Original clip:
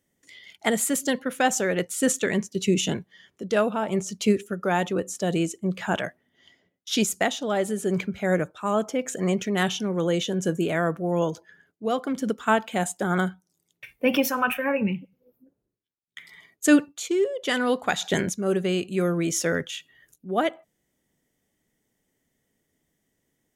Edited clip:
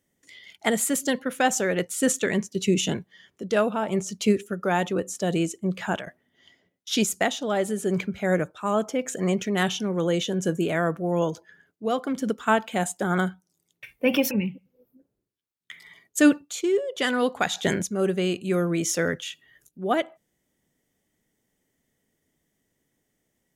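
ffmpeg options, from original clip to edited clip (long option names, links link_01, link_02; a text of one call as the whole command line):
ffmpeg -i in.wav -filter_complex "[0:a]asplit=3[link_01][link_02][link_03];[link_01]atrim=end=6.07,asetpts=PTS-STARTPTS,afade=type=out:start_time=5.82:duration=0.25:curve=qsin:silence=0.188365[link_04];[link_02]atrim=start=6.07:end=14.312,asetpts=PTS-STARTPTS,afade=type=in:duration=0.004:curve=hsin:silence=0.188365[link_05];[link_03]atrim=start=14.778[link_06];[link_04][link_05]concat=n=2:v=0:a=1[link_07];[link_07][link_06]acrossfade=duration=0.004:curve1=hsin:curve2=hsin" out.wav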